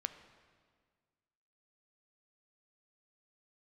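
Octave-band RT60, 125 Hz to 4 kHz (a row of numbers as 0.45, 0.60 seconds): 2.0, 2.0, 1.8, 1.7, 1.6, 1.5 seconds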